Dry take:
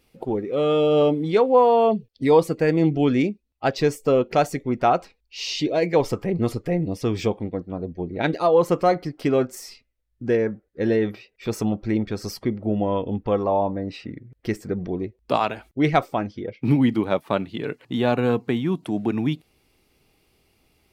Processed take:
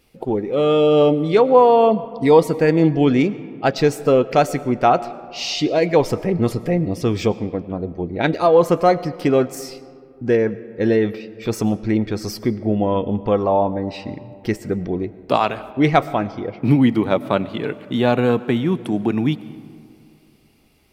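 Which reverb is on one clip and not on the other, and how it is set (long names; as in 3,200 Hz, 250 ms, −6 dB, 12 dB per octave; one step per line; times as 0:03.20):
comb and all-pass reverb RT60 2.4 s, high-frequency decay 0.45×, pre-delay 65 ms, DRR 16.5 dB
level +4 dB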